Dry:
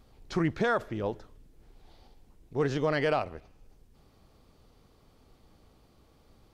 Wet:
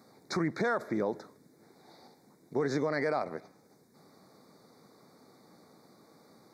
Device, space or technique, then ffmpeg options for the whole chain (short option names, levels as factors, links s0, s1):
PA system with an anti-feedback notch: -af "highpass=f=160:w=0.5412,highpass=f=160:w=1.3066,asuperstop=centerf=2900:order=12:qfactor=2.3,alimiter=level_in=1.33:limit=0.0631:level=0:latency=1:release=147,volume=0.75,volume=1.88"